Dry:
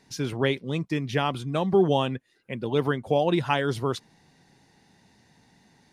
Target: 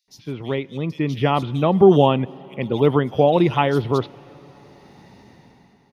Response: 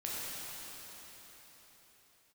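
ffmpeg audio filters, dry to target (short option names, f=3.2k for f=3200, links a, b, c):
-filter_complex "[0:a]equalizer=f=8.5k:t=o:w=1.1:g=-13,dynaudnorm=f=250:g=7:m=16dB,equalizer=f=1.6k:t=o:w=0.32:g=-9,bandreject=f=7.6k:w=12,acrossover=split=3600[a][b];[a]adelay=80[c];[c][b]amix=inputs=2:normalize=0,asplit=2[d][e];[1:a]atrim=start_sample=2205[f];[e][f]afir=irnorm=-1:irlink=0,volume=-24.5dB[g];[d][g]amix=inputs=2:normalize=0,volume=-1dB"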